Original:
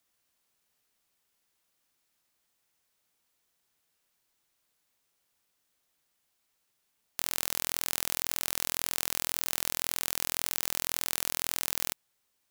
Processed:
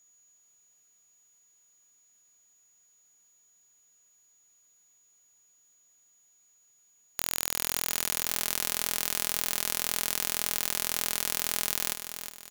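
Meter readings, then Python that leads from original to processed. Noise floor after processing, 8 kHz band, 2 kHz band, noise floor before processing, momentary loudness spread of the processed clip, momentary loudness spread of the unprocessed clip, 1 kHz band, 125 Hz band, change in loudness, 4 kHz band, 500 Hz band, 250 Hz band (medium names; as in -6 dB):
-65 dBFS, +2.0 dB, +2.0 dB, -77 dBFS, 4 LU, 2 LU, +2.0 dB, +0.5 dB, +2.0 dB, +2.0 dB, +2.5 dB, +2.0 dB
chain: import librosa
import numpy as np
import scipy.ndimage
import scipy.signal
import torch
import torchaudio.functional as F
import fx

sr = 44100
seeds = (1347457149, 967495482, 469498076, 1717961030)

y = x + 10.0 ** (-62.0 / 20.0) * np.sin(2.0 * np.pi * 6800.0 * np.arange(len(x)) / sr)
y = fx.echo_feedback(y, sr, ms=363, feedback_pct=41, wet_db=-9)
y = y * 10.0 ** (1.5 / 20.0)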